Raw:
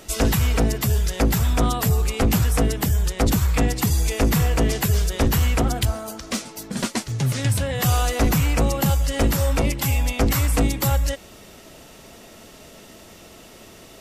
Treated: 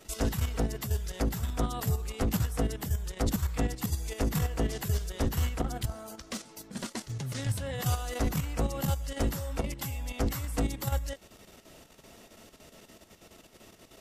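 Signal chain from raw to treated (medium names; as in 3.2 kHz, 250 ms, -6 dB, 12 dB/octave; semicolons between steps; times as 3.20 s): dynamic bell 2.4 kHz, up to -5 dB, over -48 dBFS, Q 7.9; level held to a coarse grid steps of 9 dB; trim -7.5 dB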